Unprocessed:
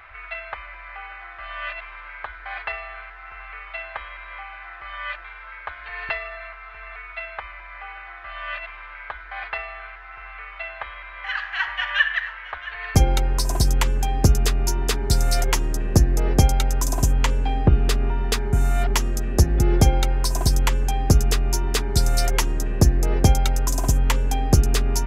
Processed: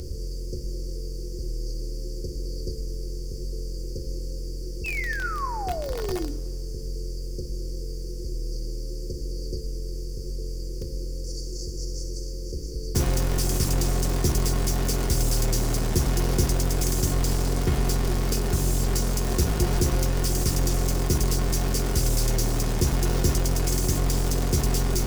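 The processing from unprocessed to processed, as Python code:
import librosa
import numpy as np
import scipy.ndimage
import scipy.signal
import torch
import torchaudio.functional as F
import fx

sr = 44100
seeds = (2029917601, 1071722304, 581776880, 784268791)

p1 = fx.bin_compress(x, sr, power=0.4)
p2 = fx.brickwall_bandstop(p1, sr, low_hz=550.0, high_hz=4400.0)
p3 = fx.spec_paint(p2, sr, seeds[0], shape='fall', start_s=4.84, length_s=1.47, low_hz=280.0, high_hz=2700.0, level_db=-27.0)
p4 = (np.mod(10.0 ** (15.5 / 20.0) * p3 + 1.0, 2.0) - 1.0) / 10.0 ** (15.5 / 20.0)
p5 = p3 + (p4 * librosa.db_to_amplitude(-4.0))
p6 = fx.comb_fb(p5, sr, f0_hz=360.0, decay_s=0.19, harmonics='all', damping=0.0, mix_pct=70)
p7 = fx.quant_dither(p6, sr, seeds[1], bits=10, dither='none')
p8 = fx.hum_notches(p7, sr, base_hz=50, count=7)
y = fx.rev_freeverb(p8, sr, rt60_s=1.6, hf_ratio=0.95, predelay_ms=25, drr_db=18.0)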